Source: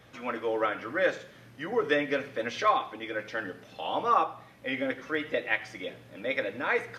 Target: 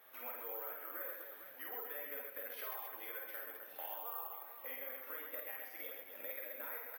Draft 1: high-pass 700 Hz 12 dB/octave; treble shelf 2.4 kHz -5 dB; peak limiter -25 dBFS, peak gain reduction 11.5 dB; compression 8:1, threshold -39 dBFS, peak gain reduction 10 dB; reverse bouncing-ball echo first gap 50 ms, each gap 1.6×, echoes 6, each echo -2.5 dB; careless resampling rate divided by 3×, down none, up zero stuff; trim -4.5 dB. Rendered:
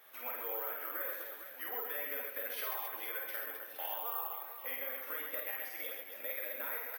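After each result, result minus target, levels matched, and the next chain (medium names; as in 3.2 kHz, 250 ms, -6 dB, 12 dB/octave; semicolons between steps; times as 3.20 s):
compression: peak gain reduction -5.5 dB; 4 kHz band +3.0 dB
high-pass 700 Hz 12 dB/octave; treble shelf 2.4 kHz -5 dB; peak limiter -25 dBFS, peak gain reduction 11.5 dB; compression 8:1, threshold -45.5 dBFS, peak gain reduction 16 dB; reverse bouncing-ball echo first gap 50 ms, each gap 1.6×, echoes 6, each echo -2.5 dB; careless resampling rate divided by 3×, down none, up zero stuff; trim -4.5 dB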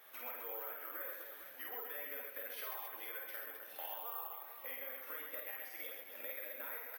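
4 kHz band +3.0 dB
high-pass 700 Hz 12 dB/octave; treble shelf 2.4 kHz -12.5 dB; peak limiter -25 dBFS, peak gain reduction 9.5 dB; compression 8:1, threshold -45.5 dBFS, peak gain reduction 16 dB; reverse bouncing-ball echo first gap 50 ms, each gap 1.6×, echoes 6, each echo -2.5 dB; careless resampling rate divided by 3×, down none, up zero stuff; trim -4.5 dB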